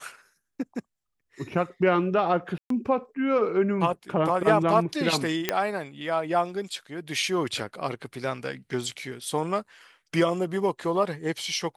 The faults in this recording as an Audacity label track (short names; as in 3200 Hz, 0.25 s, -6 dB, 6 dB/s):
2.580000	2.700000	gap 0.123 s
5.490000	5.490000	pop -7 dBFS